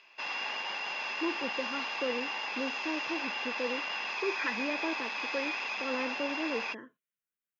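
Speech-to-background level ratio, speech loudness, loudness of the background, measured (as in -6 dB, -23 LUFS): -4.0 dB, -38.0 LUFS, -34.0 LUFS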